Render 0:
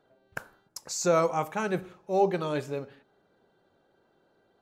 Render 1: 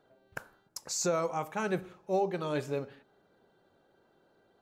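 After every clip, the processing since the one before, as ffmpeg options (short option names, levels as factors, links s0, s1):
-af "alimiter=limit=0.0944:level=0:latency=1:release=497"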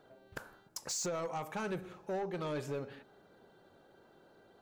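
-af "acompressor=threshold=0.0112:ratio=3,asoftclip=type=tanh:threshold=0.015,volume=1.78"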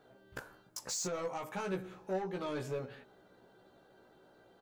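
-filter_complex "[0:a]asplit=2[s0][s1];[s1]adelay=16,volume=0.75[s2];[s0][s2]amix=inputs=2:normalize=0,volume=0.794"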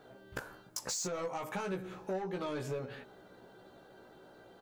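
-af "acompressor=threshold=0.00794:ratio=3,volume=2"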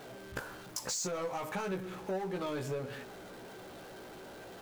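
-af "aeval=exprs='val(0)+0.5*0.00473*sgn(val(0))':c=same"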